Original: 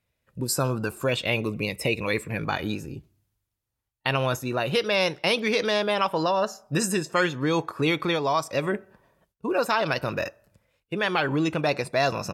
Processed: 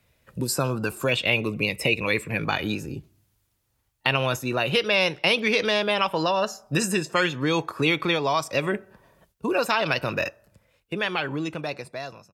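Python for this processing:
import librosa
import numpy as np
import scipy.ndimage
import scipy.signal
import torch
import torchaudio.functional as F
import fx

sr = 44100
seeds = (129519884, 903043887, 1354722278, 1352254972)

y = fx.fade_out_tail(x, sr, length_s=2.19)
y = fx.dynamic_eq(y, sr, hz=2700.0, q=1.8, threshold_db=-41.0, ratio=4.0, max_db=6)
y = fx.band_squash(y, sr, depth_pct=40)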